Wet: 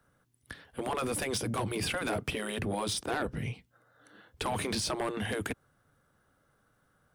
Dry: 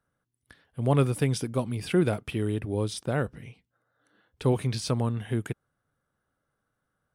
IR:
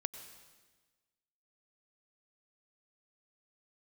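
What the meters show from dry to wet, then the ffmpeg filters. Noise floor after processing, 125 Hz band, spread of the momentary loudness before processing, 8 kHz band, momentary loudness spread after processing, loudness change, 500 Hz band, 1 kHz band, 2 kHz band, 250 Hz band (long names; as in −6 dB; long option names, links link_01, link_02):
−71 dBFS, −12.0 dB, 10 LU, +3.5 dB, 9 LU, −5.5 dB, −5.5 dB, +1.0 dB, +3.0 dB, −7.0 dB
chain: -filter_complex "[0:a]acrossover=split=130|770[link_01][link_02][link_03];[link_01]acompressor=threshold=-38dB:ratio=4[link_04];[link_02]acompressor=threshold=-27dB:ratio=4[link_05];[link_03]acompressor=threshold=-40dB:ratio=4[link_06];[link_04][link_05][link_06]amix=inputs=3:normalize=0,afftfilt=real='re*lt(hypot(re,im),0.126)':imag='im*lt(hypot(re,im),0.126)':win_size=1024:overlap=0.75,aeval=exprs='0.0668*(cos(1*acos(clip(val(0)/0.0668,-1,1)))-cos(1*PI/2))+0.0266*(cos(5*acos(clip(val(0)/0.0668,-1,1)))-cos(5*PI/2))':channel_layout=same"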